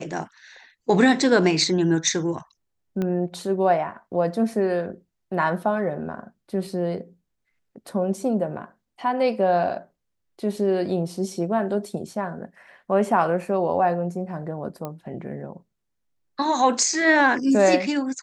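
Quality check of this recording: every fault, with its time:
3.02 s: pop -16 dBFS
14.85 s: pop -18 dBFS

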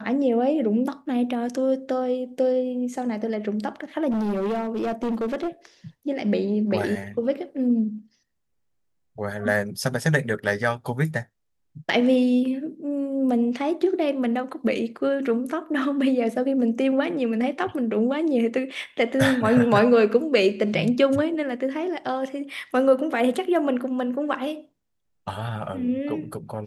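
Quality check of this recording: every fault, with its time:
4.10–5.48 s: clipped -22 dBFS

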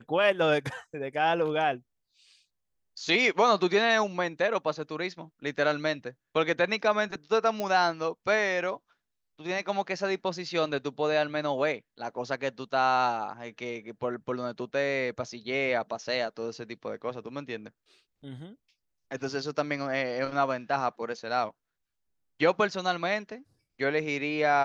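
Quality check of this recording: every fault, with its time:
7.60 s: pop -17 dBFS

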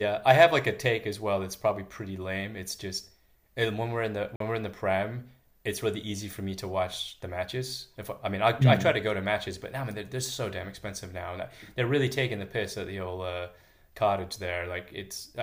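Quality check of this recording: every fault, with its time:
4.36–4.40 s: dropout 43 ms

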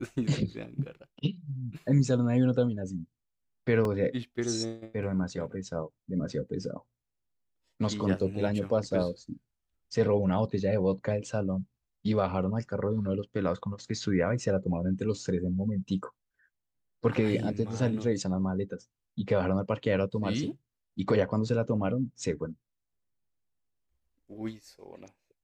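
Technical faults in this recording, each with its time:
3.85 s: dropout 2 ms

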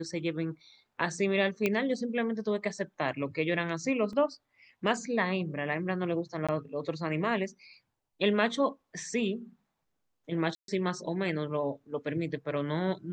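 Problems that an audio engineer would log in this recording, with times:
1.66 s: pop -14 dBFS
4.13 s: dropout 2 ms
6.47–6.49 s: dropout 16 ms
10.55–10.68 s: dropout 132 ms

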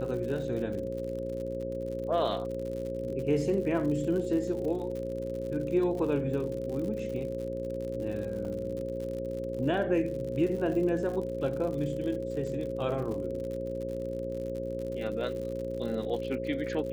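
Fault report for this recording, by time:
buzz 60 Hz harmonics 9 -38 dBFS
crackle 78 per s -37 dBFS
whine 540 Hz -37 dBFS
8.45 s: dropout 3.7 ms

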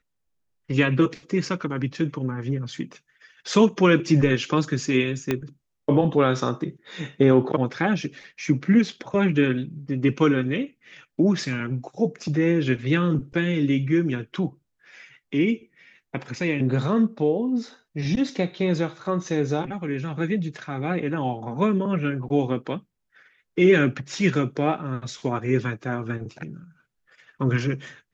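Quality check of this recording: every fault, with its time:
5.31 s: pop -10 dBFS

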